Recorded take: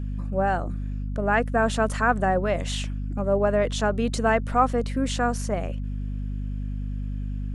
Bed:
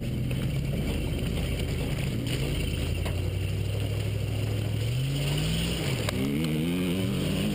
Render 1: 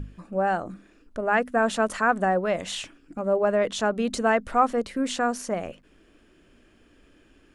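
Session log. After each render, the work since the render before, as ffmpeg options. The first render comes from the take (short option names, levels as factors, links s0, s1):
-af "bandreject=f=50:t=h:w=6,bandreject=f=100:t=h:w=6,bandreject=f=150:t=h:w=6,bandreject=f=200:t=h:w=6,bandreject=f=250:t=h:w=6"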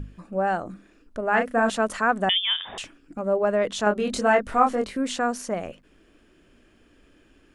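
-filter_complex "[0:a]asettb=1/sr,asplit=3[s0][s1][s2];[s0]atrim=end=1.304[s3];[s1]atrim=start=1.3:end=1.7,asetpts=PTS-STARTPTS,afade=t=in:d=0.004:c=qsin,afade=t=out:st=0.396:d=0.004:c=qsin,asplit=2[s4][s5];[s5]adelay=35,volume=0.531[s6];[s4][s6]amix=inputs=2:normalize=0,atrim=end_sample=17640[s7];[s2]atrim=start=1.696[s8];[s3][s7]acrossfade=d=0.004:c1=hsin:c2=qsin[s9];[s9][s8]acrossfade=d=0.004:c1=qsin:c2=hsin,asettb=1/sr,asplit=3[s10][s11][s12];[s10]atrim=end=2.294[s13];[s11]atrim=start=2.29:end=2.78,asetpts=PTS-STARTPTS,afade=t=in:d=0.004:c=qsin,afade=t=out:st=0.486:d=0.004:c=qsin,lowpass=f=3100:t=q:w=0.5098,lowpass=f=3100:t=q:w=0.6013,lowpass=f=3100:t=q:w=0.9,lowpass=f=3100:t=q:w=2.563,afreqshift=-3700[s14];[s12]atrim=start=2.776[s15];[s13][s14]acrossfade=d=0.004:c1=hsin:c2=qsin[s16];[s16][s15]acrossfade=d=0.004:c1=qsin:c2=hsin,asettb=1/sr,asplit=3[s17][s18][s19];[s17]atrim=end=3.844[s20];[s18]atrim=start=3.84:end=4.97,asetpts=PTS-STARTPTS,afade=t=in:d=0.004:c=qsin,afade=t=out:st=1.126:d=0.004:c=qsin,asplit=2[s21][s22];[s22]adelay=24,volume=0.708[s23];[s21][s23]amix=inputs=2:normalize=0,atrim=end_sample=49833[s24];[s19]atrim=start=4.966[s25];[s20][s24]acrossfade=d=0.004:c1=hsin:c2=qsin[s26];[s26][s25]acrossfade=d=0.004:c1=qsin:c2=hsin"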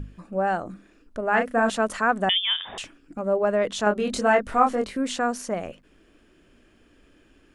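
-af anull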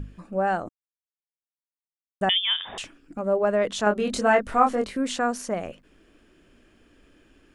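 -filter_complex "[0:a]asplit=3[s0][s1][s2];[s0]atrim=end=0.69,asetpts=PTS-STARTPTS,afade=t=out:st=0.686:d=0.004:c=hsin[s3];[s1]atrim=start=0.69:end=2.21,asetpts=PTS-STARTPTS,volume=0[s4];[s2]atrim=start=2.21,asetpts=PTS-STARTPTS,afade=t=in:d=0.004:c=hsin[s5];[s3][s4][s5]concat=n=3:v=0:a=1"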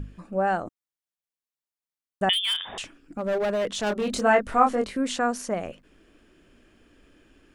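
-filter_complex "[0:a]asettb=1/sr,asplit=3[s0][s1][s2];[s0]atrim=end=2.334[s3];[s1]atrim=start=2.33:end=4.22,asetpts=PTS-STARTPTS,afade=t=in:d=0.004:c=qsin,afade=t=out:st=1.886:d=0.004:c=qsin,asoftclip=type=hard:threshold=0.0794[s4];[s2]atrim=start=4.216[s5];[s3][s4]acrossfade=d=0.004:c1=hsin:c2=qsin[s6];[s6][s5]acrossfade=d=0.004:c1=qsin:c2=hsin"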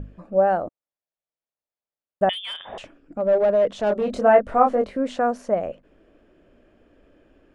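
-af "lowpass=f=1500:p=1,equalizer=f=590:w=2:g=9.5"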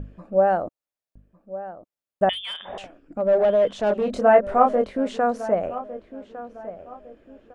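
-filter_complex "[0:a]asplit=2[s0][s1];[s1]adelay=1155,lowpass=f=2000:p=1,volume=0.188,asplit=2[s2][s3];[s3]adelay=1155,lowpass=f=2000:p=1,volume=0.35,asplit=2[s4][s5];[s5]adelay=1155,lowpass=f=2000:p=1,volume=0.35[s6];[s0][s2][s4][s6]amix=inputs=4:normalize=0"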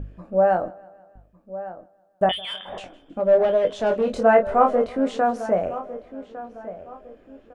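-filter_complex "[0:a]asplit=2[s0][s1];[s1]adelay=22,volume=0.422[s2];[s0][s2]amix=inputs=2:normalize=0,aecho=1:1:159|318|477|636:0.0668|0.0388|0.0225|0.013"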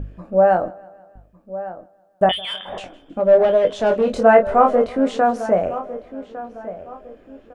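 -af "volume=1.58,alimiter=limit=0.891:level=0:latency=1"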